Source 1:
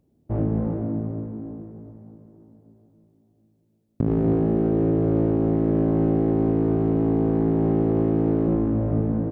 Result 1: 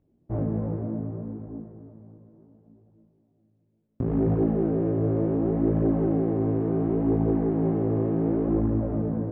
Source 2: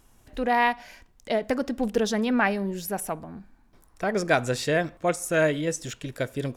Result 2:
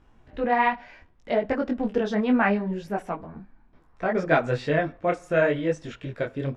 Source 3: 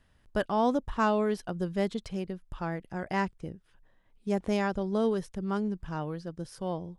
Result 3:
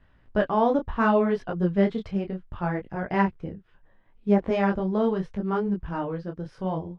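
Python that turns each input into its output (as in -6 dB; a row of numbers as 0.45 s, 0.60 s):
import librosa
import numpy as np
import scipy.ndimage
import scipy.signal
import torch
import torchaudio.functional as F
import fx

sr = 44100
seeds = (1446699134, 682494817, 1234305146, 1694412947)

y = scipy.signal.sosfilt(scipy.signal.butter(2, 2500.0, 'lowpass', fs=sr, output='sos'), x)
y = fx.detune_double(y, sr, cents=24)
y = y * 10.0 ** (-26 / 20.0) / np.sqrt(np.mean(np.square(y)))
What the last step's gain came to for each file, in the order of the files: +1.0 dB, +4.5 dB, +9.0 dB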